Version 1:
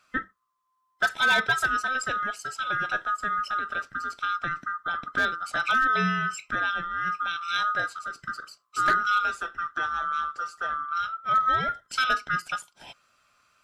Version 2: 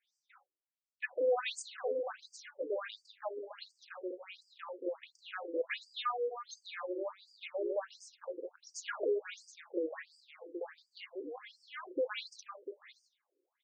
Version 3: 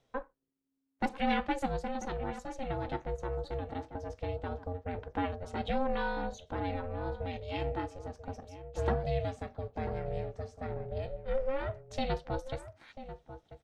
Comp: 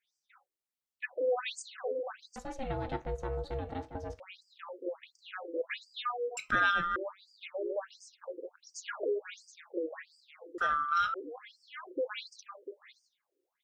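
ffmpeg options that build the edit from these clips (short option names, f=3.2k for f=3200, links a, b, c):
-filter_complex "[0:a]asplit=2[a][b];[1:a]asplit=4[c][d][e][f];[c]atrim=end=2.362[g];[2:a]atrim=start=2.358:end=4.202[h];[d]atrim=start=4.198:end=6.372[i];[a]atrim=start=6.368:end=6.962[j];[e]atrim=start=6.958:end=10.582[k];[b]atrim=start=10.578:end=11.142[l];[f]atrim=start=11.138[m];[g][h]acrossfade=d=0.004:c1=hsin:c2=hsin[n];[n][i]acrossfade=d=0.004:c1=hsin:c2=hsin[o];[o][j]acrossfade=d=0.004:c1=hsin:c2=hsin[p];[p][k]acrossfade=d=0.004:c1=hsin:c2=hsin[q];[q][l]acrossfade=d=0.004:c1=hsin:c2=hsin[r];[r][m]acrossfade=d=0.004:c1=hsin:c2=hsin"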